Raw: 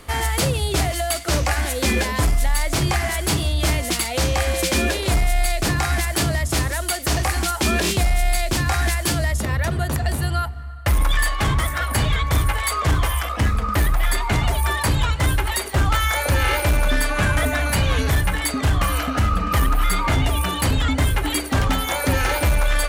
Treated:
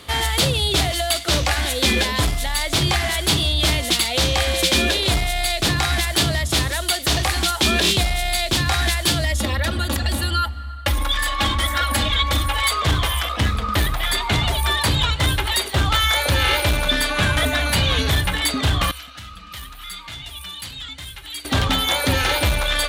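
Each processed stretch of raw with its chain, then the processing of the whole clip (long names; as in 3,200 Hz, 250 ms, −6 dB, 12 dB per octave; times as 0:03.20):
0:09.24–0:12.68: comb filter 3.6 ms, depth 90% + downward compressor 2 to 1, threshold −17 dBFS
0:18.91–0:21.45: guitar amp tone stack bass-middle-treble 5-5-5 + flanger 1.3 Hz, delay 5 ms, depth 1.3 ms, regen −66%
whole clip: high-pass filter 53 Hz; parametric band 3,600 Hz +11 dB 0.71 octaves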